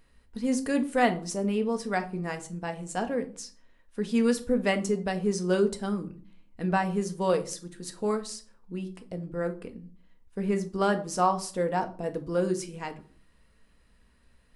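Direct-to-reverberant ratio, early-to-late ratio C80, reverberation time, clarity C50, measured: 6.0 dB, 19.5 dB, 0.45 s, 15.0 dB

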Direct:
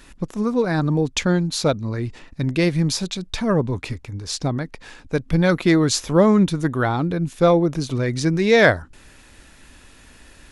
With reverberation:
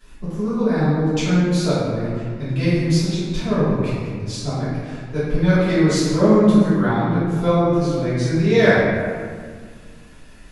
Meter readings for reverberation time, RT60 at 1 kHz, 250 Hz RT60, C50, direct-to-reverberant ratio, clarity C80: 1.8 s, 1.8 s, 2.5 s, -3.0 dB, -15.0 dB, -0.5 dB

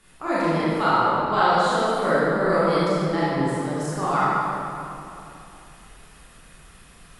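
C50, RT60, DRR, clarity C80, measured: -6.0 dB, 2.9 s, -10.5 dB, -3.0 dB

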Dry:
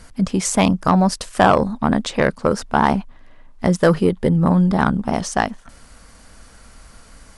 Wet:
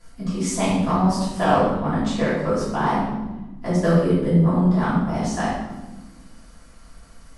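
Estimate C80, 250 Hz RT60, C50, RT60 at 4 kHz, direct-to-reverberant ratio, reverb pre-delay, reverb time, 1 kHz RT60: 3.5 dB, 2.1 s, 0.0 dB, 0.80 s, -12.5 dB, 3 ms, 1.2 s, 1.0 s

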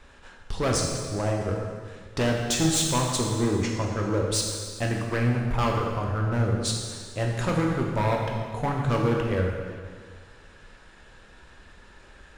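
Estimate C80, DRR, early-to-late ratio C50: 3.5 dB, -0.5 dB, 2.0 dB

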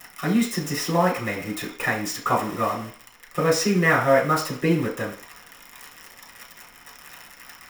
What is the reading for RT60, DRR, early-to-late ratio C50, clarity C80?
0.45 s, -5.5 dB, 8.0 dB, 12.0 dB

